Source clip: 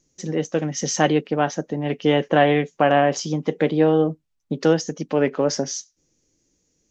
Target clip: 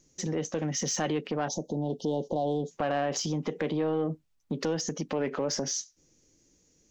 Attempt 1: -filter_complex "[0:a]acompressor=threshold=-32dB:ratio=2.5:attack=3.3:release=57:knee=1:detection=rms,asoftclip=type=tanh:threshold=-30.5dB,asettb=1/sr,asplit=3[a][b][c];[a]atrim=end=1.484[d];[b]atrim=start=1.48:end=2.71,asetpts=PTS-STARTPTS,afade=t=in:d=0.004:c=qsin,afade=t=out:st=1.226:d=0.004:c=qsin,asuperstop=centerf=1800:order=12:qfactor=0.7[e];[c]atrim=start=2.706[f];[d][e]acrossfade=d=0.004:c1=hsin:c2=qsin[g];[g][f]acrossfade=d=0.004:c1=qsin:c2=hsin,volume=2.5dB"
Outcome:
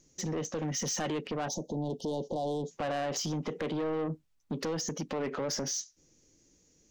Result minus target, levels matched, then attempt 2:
soft clip: distortion +11 dB
-filter_complex "[0:a]acompressor=threshold=-32dB:ratio=2.5:attack=3.3:release=57:knee=1:detection=rms,asoftclip=type=tanh:threshold=-21.5dB,asettb=1/sr,asplit=3[a][b][c];[a]atrim=end=1.484[d];[b]atrim=start=1.48:end=2.71,asetpts=PTS-STARTPTS,afade=t=in:d=0.004:c=qsin,afade=t=out:st=1.226:d=0.004:c=qsin,asuperstop=centerf=1800:order=12:qfactor=0.7[e];[c]atrim=start=2.706[f];[d][e]acrossfade=d=0.004:c1=hsin:c2=qsin[g];[g][f]acrossfade=d=0.004:c1=qsin:c2=hsin,volume=2.5dB"

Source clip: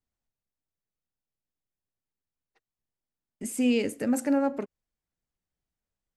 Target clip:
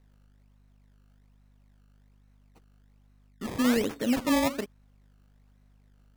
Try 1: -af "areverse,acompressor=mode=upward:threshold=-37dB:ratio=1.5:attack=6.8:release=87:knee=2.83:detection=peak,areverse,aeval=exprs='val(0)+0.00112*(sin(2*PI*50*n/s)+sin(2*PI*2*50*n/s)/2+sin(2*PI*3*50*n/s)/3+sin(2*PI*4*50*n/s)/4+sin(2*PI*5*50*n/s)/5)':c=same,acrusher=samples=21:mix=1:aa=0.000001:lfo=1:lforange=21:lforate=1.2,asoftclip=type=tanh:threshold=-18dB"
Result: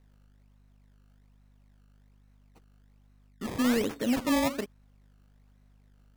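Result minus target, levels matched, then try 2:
soft clip: distortion +18 dB
-af "areverse,acompressor=mode=upward:threshold=-37dB:ratio=1.5:attack=6.8:release=87:knee=2.83:detection=peak,areverse,aeval=exprs='val(0)+0.00112*(sin(2*PI*50*n/s)+sin(2*PI*2*50*n/s)/2+sin(2*PI*3*50*n/s)/3+sin(2*PI*4*50*n/s)/4+sin(2*PI*5*50*n/s)/5)':c=same,acrusher=samples=21:mix=1:aa=0.000001:lfo=1:lforange=21:lforate=1.2,asoftclip=type=tanh:threshold=-8dB"

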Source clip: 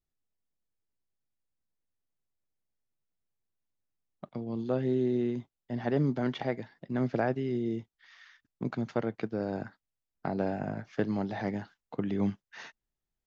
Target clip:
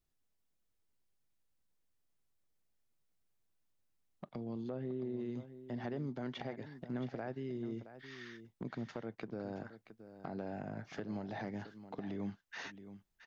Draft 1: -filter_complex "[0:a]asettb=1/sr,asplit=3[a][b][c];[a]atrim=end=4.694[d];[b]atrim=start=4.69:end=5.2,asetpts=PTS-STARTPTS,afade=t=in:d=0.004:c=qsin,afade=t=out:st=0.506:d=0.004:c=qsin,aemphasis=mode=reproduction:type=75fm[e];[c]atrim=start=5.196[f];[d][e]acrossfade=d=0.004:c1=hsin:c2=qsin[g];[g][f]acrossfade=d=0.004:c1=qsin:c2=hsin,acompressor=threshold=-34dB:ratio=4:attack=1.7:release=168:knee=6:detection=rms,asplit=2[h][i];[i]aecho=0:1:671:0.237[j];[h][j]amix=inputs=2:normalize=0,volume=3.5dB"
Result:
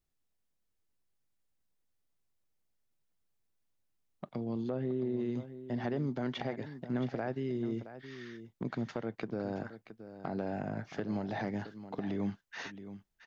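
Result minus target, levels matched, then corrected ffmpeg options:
compressor: peak gain reduction -6 dB
-filter_complex "[0:a]asettb=1/sr,asplit=3[a][b][c];[a]atrim=end=4.694[d];[b]atrim=start=4.69:end=5.2,asetpts=PTS-STARTPTS,afade=t=in:d=0.004:c=qsin,afade=t=out:st=0.506:d=0.004:c=qsin,aemphasis=mode=reproduction:type=75fm[e];[c]atrim=start=5.196[f];[d][e]acrossfade=d=0.004:c1=hsin:c2=qsin[g];[g][f]acrossfade=d=0.004:c1=qsin:c2=hsin,acompressor=threshold=-42dB:ratio=4:attack=1.7:release=168:knee=6:detection=rms,asplit=2[h][i];[i]aecho=0:1:671:0.237[j];[h][j]amix=inputs=2:normalize=0,volume=3.5dB"

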